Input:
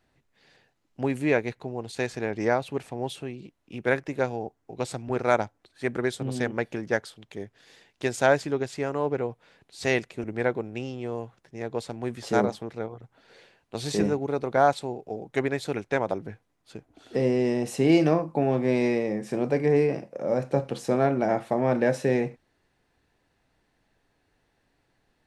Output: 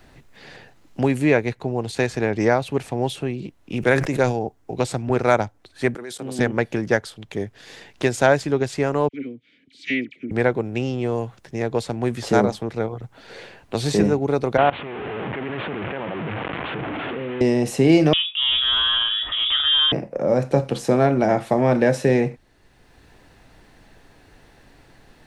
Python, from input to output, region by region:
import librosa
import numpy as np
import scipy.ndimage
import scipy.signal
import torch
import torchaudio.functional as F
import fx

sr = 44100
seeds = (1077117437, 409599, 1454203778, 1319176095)

y = fx.chain(x, sr, fx.peak_eq(hz=8300.0, db=6.0, octaves=1.6),
    fx.sustainer(db_per_s=97.0), at=(3.76, 4.39))
y = fx.chain(y, sr, fx.highpass(hz=250.0, slope=12),
    fx.high_shelf(hz=5600.0, db=10.0),
    fx.level_steps(step_db=21), at=(5.94, 6.39))
y = fx.chain(y, sr, fx.dynamic_eq(hz=2800.0, q=0.71, threshold_db=-40.0, ratio=4.0, max_db=7),
    fx.vowel_filter(vowel='i'),
    fx.dispersion(late='lows', ms=55.0, hz=1600.0), at=(9.08, 10.31))
y = fx.chain(y, sr, fx.delta_mod(bps=16000, step_db=-21.0),
    fx.highpass(hz=140.0, slope=12),
    fx.level_steps(step_db=20), at=(14.57, 17.41))
y = fx.chain(y, sr, fx.transient(attack_db=-4, sustain_db=7),
    fx.notch_comb(f0_hz=310.0),
    fx.freq_invert(carrier_hz=3600), at=(18.13, 19.92))
y = fx.low_shelf(y, sr, hz=84.0, db=10.0)
y = fx.band_squash(y, sr, depth_pct=40)
y = y * 10.0 ** (6.0 / 20.0)